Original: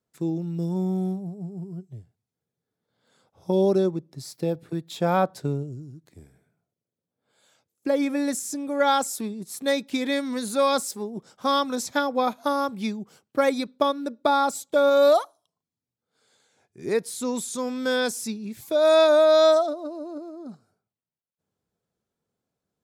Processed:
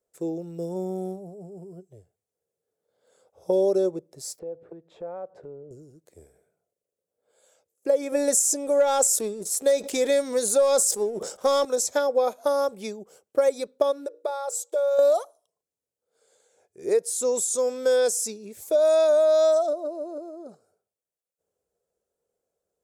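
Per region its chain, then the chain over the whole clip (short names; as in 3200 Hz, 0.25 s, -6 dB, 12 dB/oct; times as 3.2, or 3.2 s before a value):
4.39–5.71 block floating point 7-bit + LPF 1500 Hz + compressor 4:1, threshold -38 dBFS
8.12–11.65 sample leveller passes 1 + sustainer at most 110 dB/s
14.06–14.99 notches 60/120/180/240/300/360/420/480 Hz + compressor 2:1, threshold -35 dBFS + brick-wall FIR high-pass 310 Hz
whole clip: graphic EQ 125/250/500/1000/2000/4000/8000 Hz -12/-10/+12/-5/-4/-7/+5 dB; compressor 4:1, threshold -18 dBFS; dynamic EQ 6600 Hz, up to +6 dB, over -47 dBFS, Q 1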